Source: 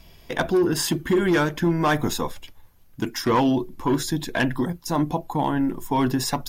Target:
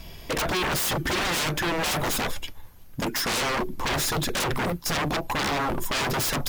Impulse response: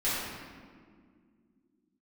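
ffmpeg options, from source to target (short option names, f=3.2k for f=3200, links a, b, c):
-af "aeval=exprs='0.0376*(abs(mod(val(0)/0.0376+3,4)-2)-1)':c=same,volume=7.5dB"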